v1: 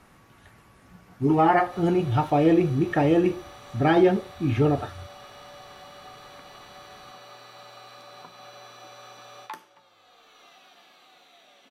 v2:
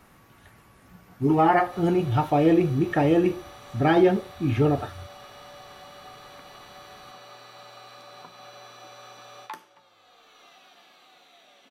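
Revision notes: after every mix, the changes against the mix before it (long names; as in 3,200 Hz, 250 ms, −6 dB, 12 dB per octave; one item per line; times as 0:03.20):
speech: remove low-pass filter 11,000 Hz 12 dB per octave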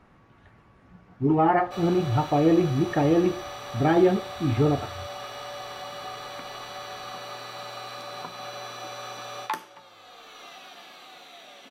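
speech: add head-to-tape spacing loss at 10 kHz 21 dB
background +8.5 dB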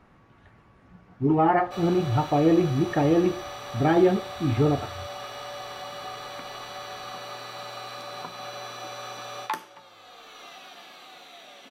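nothing changed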